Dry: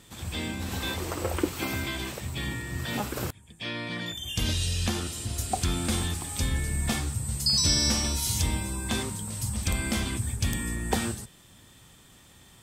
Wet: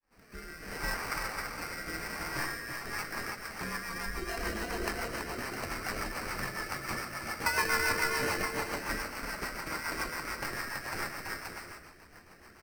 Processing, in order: fade-in on the opening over 0.77 s; in parallel at -2 dB: compression, threshold -35 dBFS, peak gain reduction 15 dB; on the sum: ladder high-pass 1.1 kHz, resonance 45%; sample-rate reducer 3.5 kHz, jitter 0%; flange 0.22 Hz, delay 3.5 ms, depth 9.8 ms, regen -42%; bouncing-ball echo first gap 330 ms, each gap 0.6×, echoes 5; rotary cabinet horn 0.7 Hz, later 7 Hz, at 2.27 s; trim +8.5 dB

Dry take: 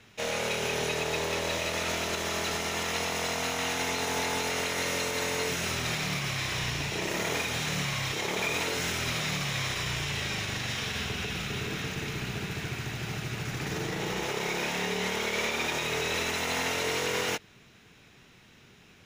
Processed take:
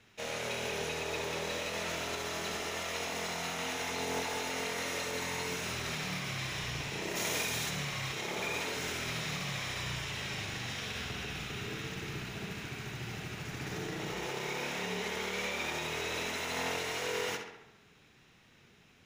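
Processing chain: 7.15–7.69 s: treble shelf 3.5 kHz -> 6.6 kHz +11 dB; on a send: tape echo 67 ms, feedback 63%, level -5 dB, low-pass 4.5 kHz; on the sum: trim -7 dB

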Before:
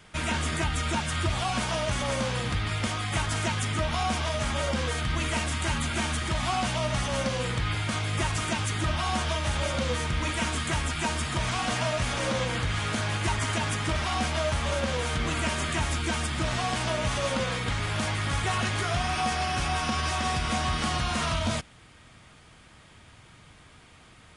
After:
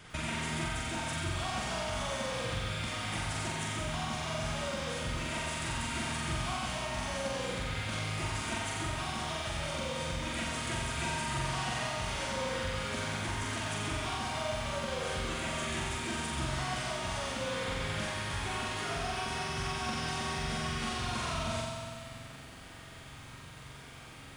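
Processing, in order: compression 12:1, threshold -35 dBFS, peak gain reduction 13.5 dB; on a send: flutter echo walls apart 7.5 m, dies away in 0.97 s; on the sum: bit-crushed delay 95 ms, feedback 80%, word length 10-bit, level -8 dB

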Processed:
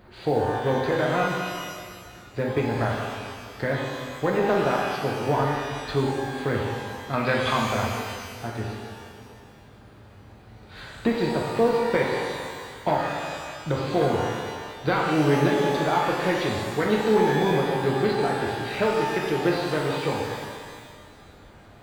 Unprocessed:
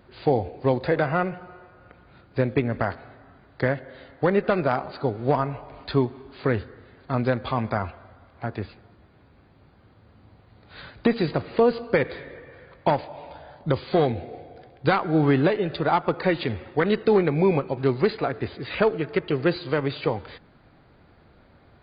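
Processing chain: companding laws mixed up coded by mu; 7.13–7.58 s: peaking EQ 2.6 kHz +10.5 dB 2.5 oct; pitch-shifted reverb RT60 1.7 s, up +12 st, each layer -8 dB, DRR -2 dB; trim -5 dB

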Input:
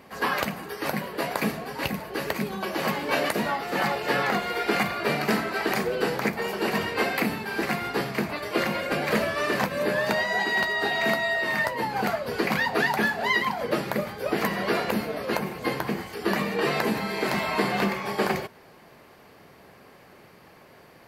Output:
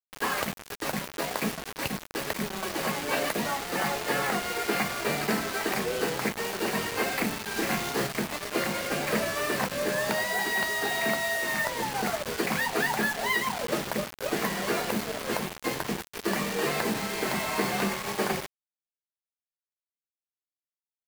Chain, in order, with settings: bit crusher 5-bit; 7.53–8.07 s: doubling 31 ms -2.5 dB; trim -3.5 dB

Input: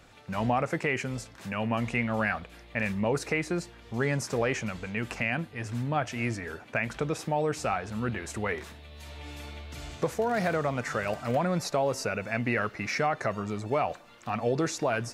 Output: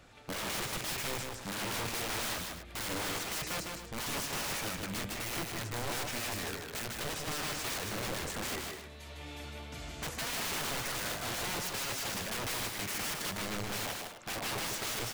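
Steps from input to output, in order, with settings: integer overflow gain 30 dB; loudspeakers at several distances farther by 53 m -4 dB, 89 m -12 dB; trim -2.5 dB

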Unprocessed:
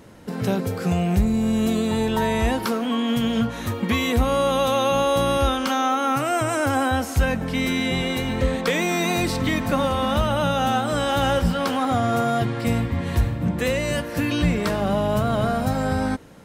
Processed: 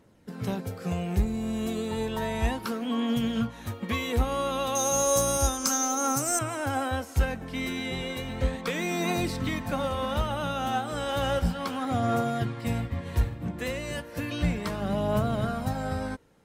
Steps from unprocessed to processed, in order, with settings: 4.75–6.39 s: resonant high shelf 4.4 kHz +12.5 dB, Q 3; in parallel at -6 dB: hard clipper -15.5 dBFS, distortion -17 dB; on the sum: phaser 0.33 Hz, delay 3 ms, feedback 27%; upward expansion 1.5:1, over -33 dBFS; trim -7.5 dB

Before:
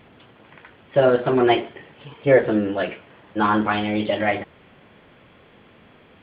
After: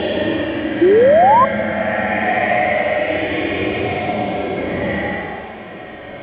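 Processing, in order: in parallel at -2 dB: compressor with a negative ratio -29 dBFS, ratio -1; on the sum: spring tank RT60 2.5 s, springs 34 ms, chirp 65 ms, DRR 12.5 dB; Paulstretch 19×, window 0.05 s, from 4.16 s; painted sound rise, 0.81–1.45 s, 330–1100 Hz -10 dBFS

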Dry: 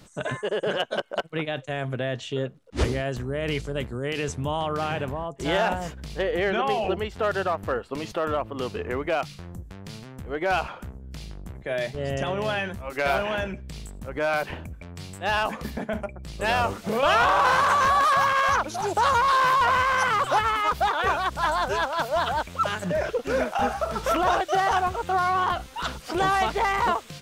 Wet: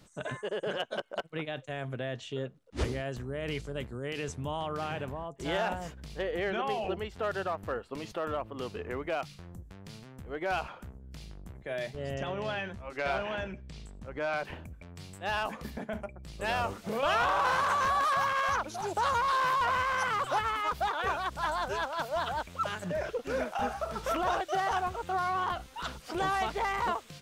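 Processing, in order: 12.14–14.45 s: low-pass 6.5 kHz 12 dB/octave; trim -7.5 dB

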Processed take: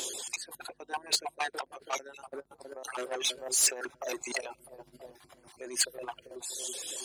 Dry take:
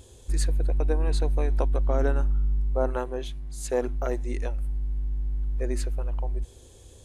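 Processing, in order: random holes in the spectrogram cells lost 33%; reverb removal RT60 1.8 s; feedback echo behind a low-pass 326 ms, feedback 57%, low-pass 1 kHz, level -19.5 dB; compressor with a negative ratio -37 dBFS, ratio -1; peaking EQ 1.7 kHz -5.5 dB 2.7 oct; overdrive pedal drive 19 dB, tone 3.5 kHz, clips at -20 dBFS; 1.27–3.46 s: tremolo saw down 7.6 Hz, depth 65%; high-pass 340 Hz 12 dB/octave; treble shelf 2.3 kHz +11.5 dB; band-stop 480 Hz, Q 12; transformer saturation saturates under 2 kHz

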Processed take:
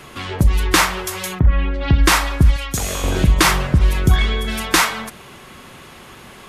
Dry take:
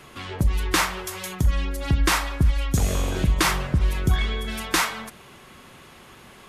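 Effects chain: 1.38–1.97 s: low-pass 2 kHz -> 4.6 kHz 24 dB/octave; 2.56–3.04 s: bass shelf 450 Hz -11.5 dB; trim +7 dB

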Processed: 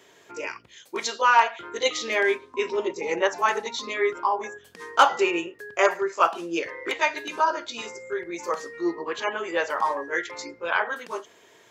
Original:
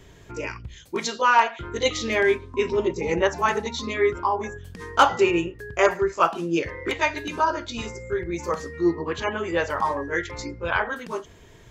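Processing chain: high-pass 420 Hz 12 dB/octave

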